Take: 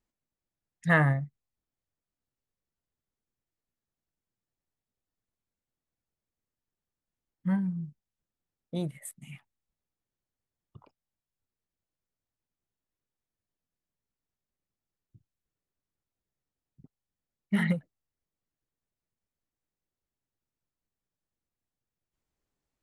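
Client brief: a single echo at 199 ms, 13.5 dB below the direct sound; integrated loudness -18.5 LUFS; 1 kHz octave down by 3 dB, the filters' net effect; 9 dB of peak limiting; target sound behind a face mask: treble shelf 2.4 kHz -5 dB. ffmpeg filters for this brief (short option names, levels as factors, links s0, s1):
-af "equalizer=f=1000:t=o:g=-3,alimiter=limit=0.0944:level=0:latency=1,highshelf=f=2400:g=-5,aecho=1:1:199:0.211,volume=5.62"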